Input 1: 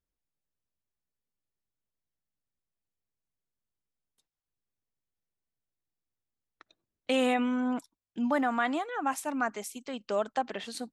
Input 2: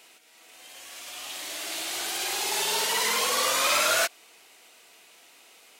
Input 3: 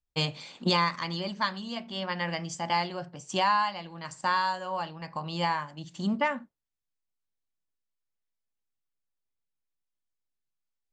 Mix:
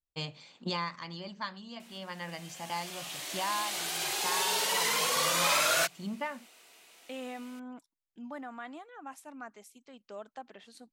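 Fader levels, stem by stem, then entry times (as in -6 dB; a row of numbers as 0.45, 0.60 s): -14.5, -3.5, -9.0 dB; 0.00, 1.80, 0.00 s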